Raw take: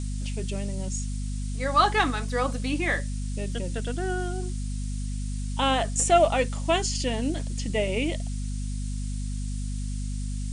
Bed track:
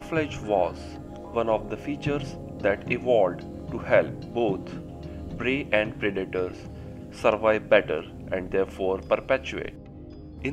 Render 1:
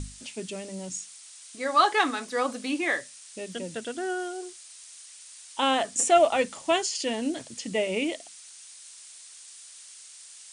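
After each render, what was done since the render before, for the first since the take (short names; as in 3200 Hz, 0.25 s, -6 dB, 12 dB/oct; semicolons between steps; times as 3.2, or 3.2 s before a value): notches 50/100/150/200/250 Hz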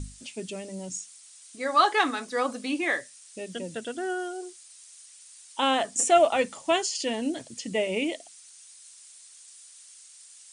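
denoiser 6 dB, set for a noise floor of -48 dBFS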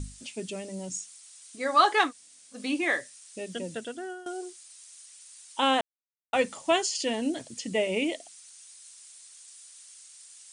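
2.08–2.56 room tone, crossfade 0.10 s; 3.71–4.26 fade out, to -16 dB; 5.81–6.33 mute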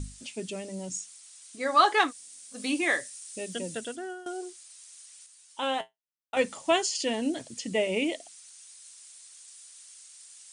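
2.08–3.96 high shelf 6500 Hz +10.5 dB; 5.26–6.37 resonator 60 Hz, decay 0.15 s, harmonics odd, mix 80%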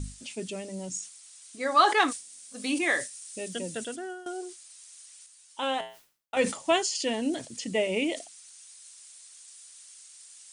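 sustainer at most 130 dB/s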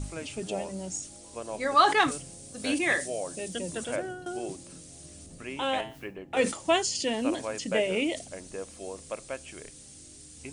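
add bed track -13.5 dB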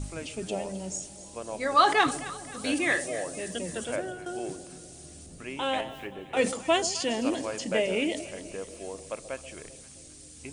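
echo with dull and thin repeats by turns 0.131 s, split 800 Hz, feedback 70%, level -12.5 dB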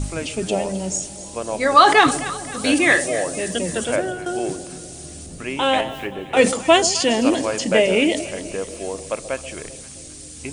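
gain +10.5 dB; limiter -1 dBFS, peak gain reduction 3 dB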